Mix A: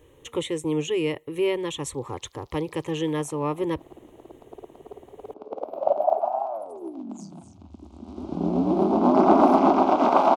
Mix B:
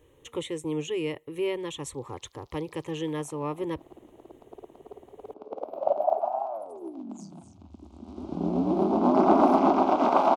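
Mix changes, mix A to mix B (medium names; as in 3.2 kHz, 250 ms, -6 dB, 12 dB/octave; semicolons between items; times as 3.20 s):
speech -5.0 dB; background -3.0 dB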